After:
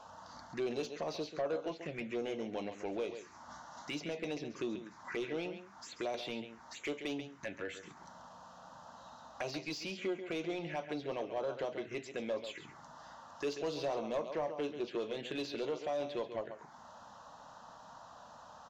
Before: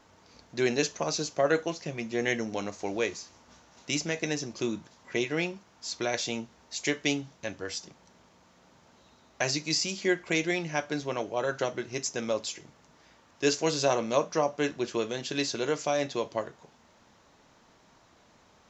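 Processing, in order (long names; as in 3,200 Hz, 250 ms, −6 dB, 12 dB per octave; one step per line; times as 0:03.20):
dynamic equaliser 5,200 Hz, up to −5 dB, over −48 dBFS, Q 3
downward compressor 2 to 1, threshold −49 dBFS, peak gain reduction 16 dB
phaser swept by the level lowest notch 310 Hz, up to 1,800 Hz, full sweep at −38 dBFS
single-tap delay 137 ms −12 dB
mid-hump overdrive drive 18 dB, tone 1,500 Hz, clips at −26.5 dBFS
level +1.5 dB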